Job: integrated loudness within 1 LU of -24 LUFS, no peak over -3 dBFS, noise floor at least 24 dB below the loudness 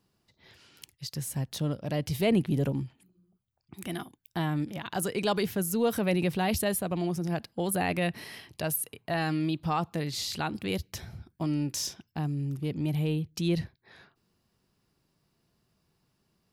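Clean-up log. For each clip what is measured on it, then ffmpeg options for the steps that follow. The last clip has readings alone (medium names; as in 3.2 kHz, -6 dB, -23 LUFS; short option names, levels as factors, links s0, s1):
loudness -30.5 LUFS; peak level -15.5 dBFS; loudness target -24.0 LUFS
-> -af "volume=2.11"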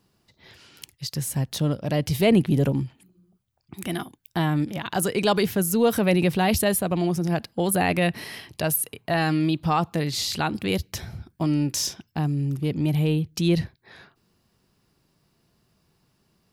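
loudness -24.0 LUFS; peak level -9.0 dBFS; noise floor -69 dBFS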